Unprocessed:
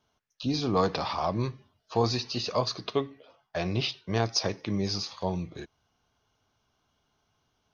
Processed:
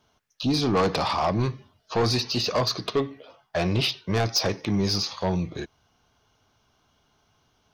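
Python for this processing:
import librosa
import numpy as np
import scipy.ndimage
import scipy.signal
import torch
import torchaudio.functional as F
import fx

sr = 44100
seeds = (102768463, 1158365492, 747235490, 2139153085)

y = 10.0 ** (-24.0 / 20.0) * np.tanh(x / 10.0 ** (-24.0 / 20.0))
y = y * librosa.db_to_amplitude(7.5)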